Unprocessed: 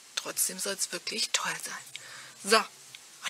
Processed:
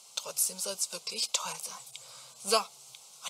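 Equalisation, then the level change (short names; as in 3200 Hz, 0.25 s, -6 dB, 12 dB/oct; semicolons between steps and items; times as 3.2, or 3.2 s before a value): HPF 120 Hz 12 dB/oct; fixed phaser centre 730 Hz, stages 4; 0.0 dB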